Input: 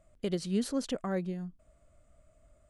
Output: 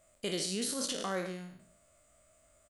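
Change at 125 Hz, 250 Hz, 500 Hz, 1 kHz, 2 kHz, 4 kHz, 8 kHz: -7.5 dB, -6.5 dB, -2.5 dB, +2.0 dB, +4.5 dB, +7.5 dB, +9.5 dB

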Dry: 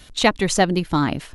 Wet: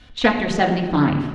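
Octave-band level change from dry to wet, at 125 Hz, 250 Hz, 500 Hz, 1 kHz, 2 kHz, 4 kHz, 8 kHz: +2.0 dB, +2.5 dB, -0.5 dB, +0.5 dB, +1.0 dB, -4.0 dB, -13.5 dB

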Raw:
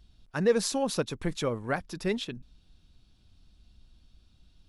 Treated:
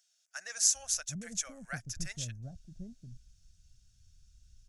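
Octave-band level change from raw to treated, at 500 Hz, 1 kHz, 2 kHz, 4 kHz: -25.5 dB, -15.0 dB, -6.0 dB, -2.0 dB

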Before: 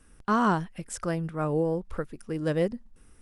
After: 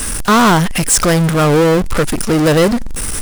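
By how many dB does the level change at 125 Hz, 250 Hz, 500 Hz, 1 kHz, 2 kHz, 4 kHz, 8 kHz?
+17.0 dB, +16.0 dB, +15.5 dB, +14.5 dB, +18.5 dB, +26.0 dB, +27.5 dB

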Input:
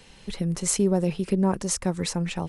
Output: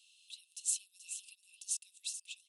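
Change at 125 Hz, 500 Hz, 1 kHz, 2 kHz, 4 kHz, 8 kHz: under -40 dB, under -40 dB, under -40 dB, -16.5 dB, -10.5 dB, -7.5 dB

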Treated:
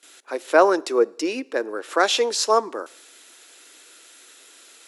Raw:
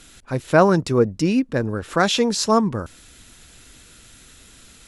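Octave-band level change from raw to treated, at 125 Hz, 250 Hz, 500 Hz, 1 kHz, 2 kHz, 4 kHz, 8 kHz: under -30 dB, -9.0 dB, 0.0 dB, 0.0 dB, 0.0 dB, 0.0 dB, 0.0 dB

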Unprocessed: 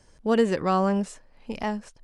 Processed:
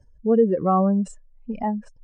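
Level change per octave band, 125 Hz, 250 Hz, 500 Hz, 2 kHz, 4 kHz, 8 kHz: +5.0 dB, +4.0 dB, +3.5 dB, under -10 dB, under -15 dB, no reading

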